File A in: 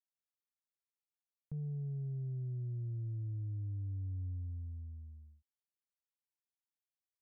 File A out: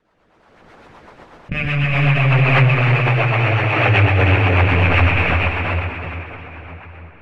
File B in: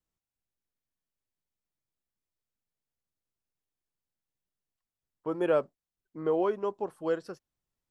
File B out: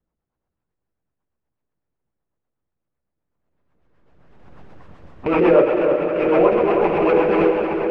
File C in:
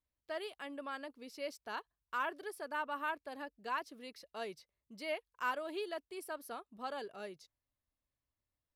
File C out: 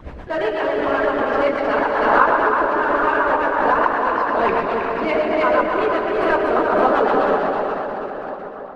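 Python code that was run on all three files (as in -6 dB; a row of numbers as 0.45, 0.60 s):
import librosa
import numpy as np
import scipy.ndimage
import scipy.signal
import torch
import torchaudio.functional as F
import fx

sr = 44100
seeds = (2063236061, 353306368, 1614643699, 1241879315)

p1 = fx.rattle_buzz(x, sr, strikes_db=-50.0, level_db=-26.0)
p2 = fx.quant_companded(p1, sr, bits=2)
p3 = p1 + (p2 * 10.0 ** (-11.0 / 20.0))
p4 = fx.rider(p3, sr, range_db=4, speed_s=0.5)
p5 = fx.rev_plate(p4, sr, seeds[0], rt60_s=4.7, hf_ratio=0.75, predelay_ms=0, drr_db=-6.0)
p6 = fx.rotary(p5, sr, hz=8.0)
p7 = scipy.signal.sosfilt(scipy.signal.butter(2, 1200.0, 'lowpass', fs=sr, output='sos'), p6)
p8 = fx.hpss(p7, sr, part='harmonic', gain_db=-12)
p9 = fx.hum_notches(p8, sr, base_hz=50, count=8)
p10 = p9 + 10.0 ** (-6.0 / 20.0) * np.pad(p9, (int(318 * sr / 1000.0), 0))[:len(p9)]
p11 = fx.pre_swell(p10, sr, db_per_s=29.0)
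y = librosa.util.normalize(p11) * 10.0 ** (-2 / 20.0)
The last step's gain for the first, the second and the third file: +25.0, +14.0, +22.5 dB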